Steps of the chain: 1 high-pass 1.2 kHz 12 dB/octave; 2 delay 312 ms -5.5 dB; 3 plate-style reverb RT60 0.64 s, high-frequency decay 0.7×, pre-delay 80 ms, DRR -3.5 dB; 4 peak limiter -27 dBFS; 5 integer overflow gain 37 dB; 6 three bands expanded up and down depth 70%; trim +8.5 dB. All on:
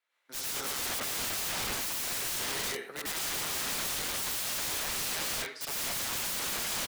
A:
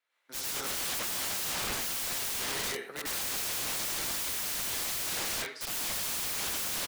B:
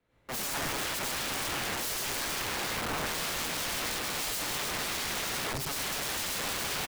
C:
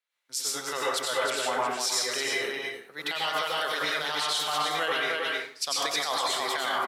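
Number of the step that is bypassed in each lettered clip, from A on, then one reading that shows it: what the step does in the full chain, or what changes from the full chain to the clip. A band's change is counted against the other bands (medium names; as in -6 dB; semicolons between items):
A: 4, mean gain reduction 2.5 dB; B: 1, 8 kHz band -5.0 dB; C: 5, 125 Hz band -10.0 dB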